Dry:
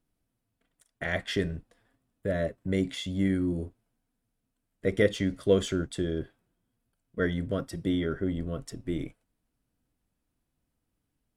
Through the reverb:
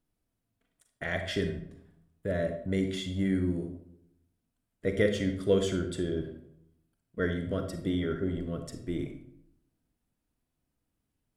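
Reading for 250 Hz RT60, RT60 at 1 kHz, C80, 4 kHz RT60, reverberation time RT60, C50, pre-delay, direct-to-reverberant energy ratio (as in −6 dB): 0.90 s, 0.65 s, 11.0 dB, 0.45 s, 0.70 s, 7.5 dB, 36 ms, 6.5 dB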